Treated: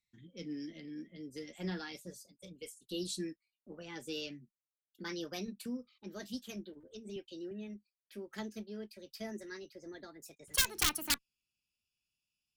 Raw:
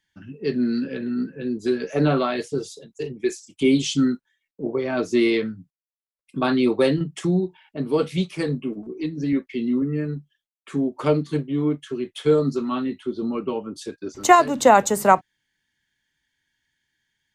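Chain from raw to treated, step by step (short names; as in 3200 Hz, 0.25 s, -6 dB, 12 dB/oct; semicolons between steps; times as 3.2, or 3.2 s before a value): speed glide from 120% -> 156%; wrapped overs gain 6 dB; passive tone stack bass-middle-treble 6-0-2; gain +2 dB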